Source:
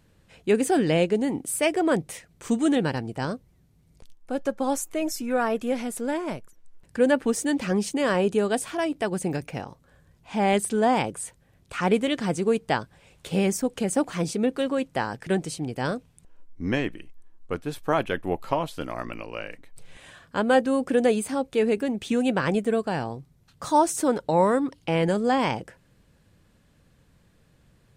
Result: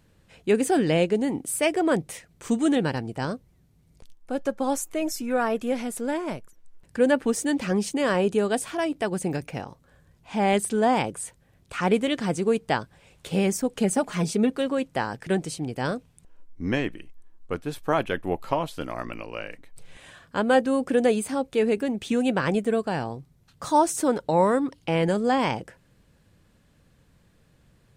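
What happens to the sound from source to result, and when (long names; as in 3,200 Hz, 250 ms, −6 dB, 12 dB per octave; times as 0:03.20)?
0:13.78–0:14.50: comb filter 4.8 ms, depth 61%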